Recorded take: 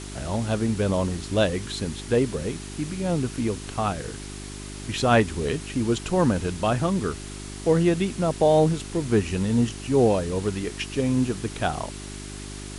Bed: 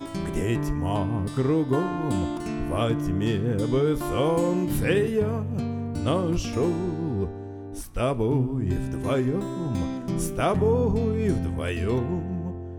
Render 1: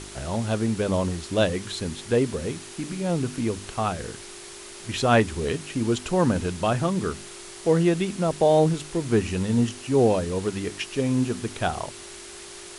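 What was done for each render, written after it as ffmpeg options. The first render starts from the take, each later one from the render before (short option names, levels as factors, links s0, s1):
-af "bandreject=f=50:t=h:w=4,bandreject=f=100:t=h:w=4,bandreject=f=150:t=h:w=4,bandreject=f=200:t=h:w=4,bandreject=f=250:t=h:w=4,bandreject=f=300:t=h:w=4"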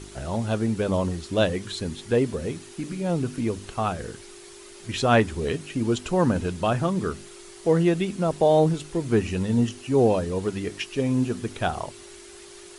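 -af "afftdn=nr=7:nf=-42"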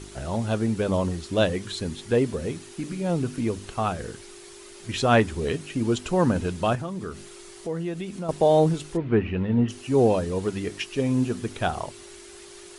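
-filter_complex "[0:a]asettb=1/sr,asplit=3[s0][s1][s2];[s0]atrim=end=6.754[s3];[s1]atrim=start=6.75:end=8.29,asetpts=PTS-STARTPTS,afade=t=in:d=0.004:c=qsin,afade=t=out:st=1.536:d=0.004:c=qsin,acompressor=threshold=0.02:ratio=2:attack=3.2:release=140:knee=1:detection=peak[s4];[s2]atrim=start=8.286[s5];[s3][s4]acrossfade=d=0.004:c1=hsin:c2=qsin[s6];[s6][s5]acrossfade=d=0.004:c1=qsin:c2=hsin,asplit=3[s7][s8][s9];[s7]afade=t=out:st=8.96:d=0.02[s10];[s8]lowpass=f=2800:w=0.5412,lowpass=f=2800:w=1.3066,afade=t=in:st=8.96:d=0.02,afade=t=out:st=9.68:d=0.02[s11];[s9]afade=t=in:st=9.68:d=0.02[s12];[s10][s11][s12]amix=inputs=3:normalize=0"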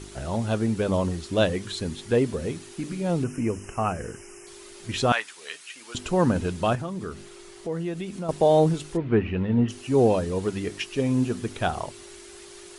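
-filter_complex "[0:a]asettb=1/sr,asplit=3[s0][s1][s2];[s0]atrim=end=3.244[s3];[s1]atrim=start=3.24:end=4.47,asetpts=PTS-STARTPTS,afade=t=in:d=0.004:c=qsin,afade=t=out:st=1.226:d=0.004:c=qsin,asuperstop=centerf=3900:order=20:qfactor=2[s4];[s2]atrim=start=4.466[s5];[s3][s4]acrossfade=d=0.004:c1=hsin:c2=qsin[s6];[s6][s5]acrossfade=d=0.004:c1=qsin:c2=hsin,asettb=1/sr,asplit=3[s7][s8][s9];[s7]atrim=end=5.124[s10];[s8]atrim=start=5.12:end=5.95,asetpts=PTS-STARTPTS,afade=t=in:d=0.004:c=qsin,afade=t=out:st=0.826:d=0.004:c=qsin,highpass=1400[s11];[s9]atrim=start=5.946[s12];[s10][s11]acrossfade=d=0.004:c1=hsin:c2=qsin[s13];[s13][s12]acrossfade=d=0.004:c1=qsin:c2=hsin,asettb=1/sr,asplit=3[s14][s15][s16];[s14]atrim=end=7.144[s17];[s15]atrim=start=7.14:end=7.72,asetpts=PTS-STARTPTS,afade=t=in:d=0.004:c=qsin,afade=t=out:st=0.576:d=0.004:c=qsin,highshelf=f=5400:g=-6[s18];[s16]atrim=start=7.716[s19];[s17][s18]acrossfade=d=0.004:c1=hsin:c2=qsin[s20];[s20][s19]acrossfade=d=0.004:c1=qsin:c2=hsin"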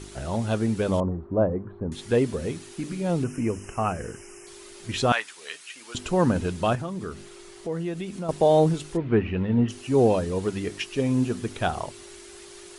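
-filter_complex "[0:a]asettb=1/sr,asplit=3[s0][s1][s2];[s0]atrim=end=1.004[s3];[s1]atrim=start=1:end=1.92,asetpts=PTS-STARTPTS,afade=t=in:d=0.004:c=qsin,afade=t=out:st=0.916:d=0.004:c=qsin,lowpass=f=1100:w=0.5412,lowpass=f=1100:w=1.3066[s4];[s2]atrim=start=1.916[s5];[s3][s4]acrossfade=d=0.004:c1=hsin:c2=qsin[s6];[s6][s5]acrossfade=d=0.004:c1=qsin:c2=hsin"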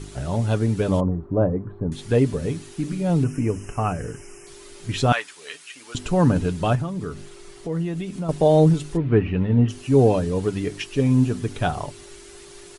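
-af "lowshelf=f=220:g=8,aecho=1:1:6.9:0.37"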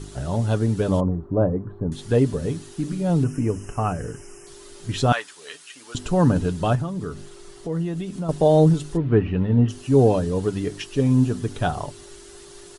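-af "equalizer=f=2300:w=3.1:g=-6"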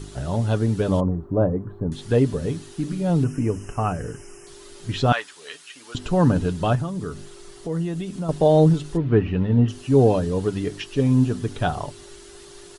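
-filter_complex "[0:a]acrossover=split=4600[s0][s1];[s1]acompressor=threshold=0.002:ratio=4:attack=1:release=60[s2];[s0][s2]amix=inputs=2:normalize=0,highshelf=f=4500:g=6.5"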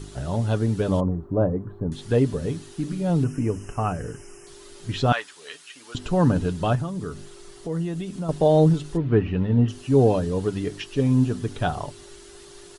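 -af "volume=0.841"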